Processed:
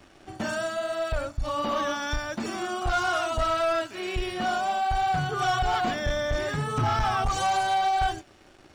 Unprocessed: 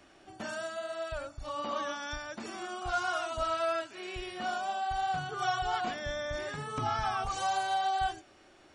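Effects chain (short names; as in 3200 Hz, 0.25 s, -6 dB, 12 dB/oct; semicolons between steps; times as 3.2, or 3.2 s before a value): low shelf 220 Hz +9 dB; sample leveller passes 2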